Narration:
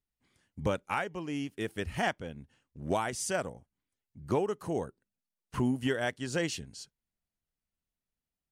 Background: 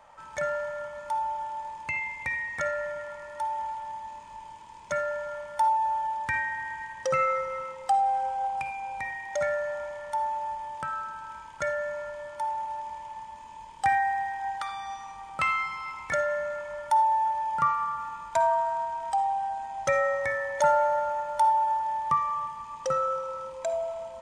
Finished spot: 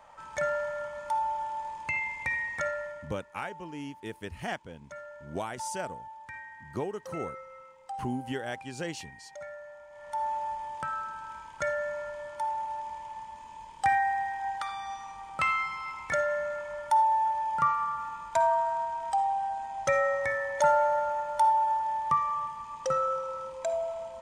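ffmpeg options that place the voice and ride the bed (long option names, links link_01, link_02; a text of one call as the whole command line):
ffmpeg -i stem1.wav -i stem2.wav -filter_complex "[0:a]adelay=2450,volume=-4.5dB[link_01];[1:a]volume=14dB,afade=type=out:start_time=2.46:duration=0.73:silence=0.177828,afade=type=in:start_time=9.89:duration=0.41:silence=0.199526[link_02];[link_01][link_02]amix=inputs=2:normalize=0" out.wav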